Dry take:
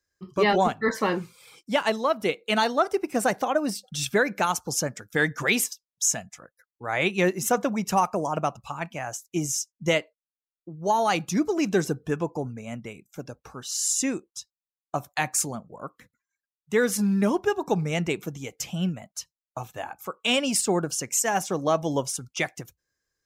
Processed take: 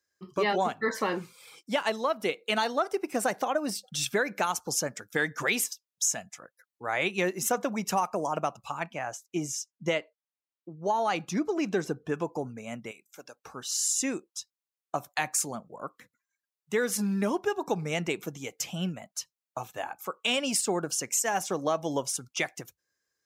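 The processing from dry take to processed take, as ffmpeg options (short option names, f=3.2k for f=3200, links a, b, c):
-filter_complex "[0:a]asettb=1/sr,asplit=3[a][b][c];[a]atrim=end=8.834[d];[b]atrim=start=8.83:end=12.14,asetpts=PTS-STARTPTS,afade=t=in:d=0.004:c=qsin,afade=t=out:st=3.306:d=0.004:c=qsin,lowpass=f=3.4k:p=1[e];[c]atrim=start=12.136[f];[d][e]acrossfade=d=0.004:c1=hsin:c2=qsin[g];[g][f]acrossfade=d=0.004:c1=qsin:c2=hsin,asettb=1/sr,asplit=3[h][i][j];[h]atrim=end=12.914[k];[i]atrim=start=12.91:end=13.44,asetpts=PTS-STARTPTS,afade=t=in:d=0.004:c=qsin,afade=t=out:st=0.526:d=0.004:c=qsin,highpass=f=1.1k:p=1[l];[j]atrim=start=13.436[m];[k][l]acrossfade=d=0.004:c1=hsin:c2=qsin[n];[n][m]acrossfade=d=0.004:c1=qsin:c2=hsin,highpass=f=260:p=1,acompressor=threshold=-26dB:ratio=2"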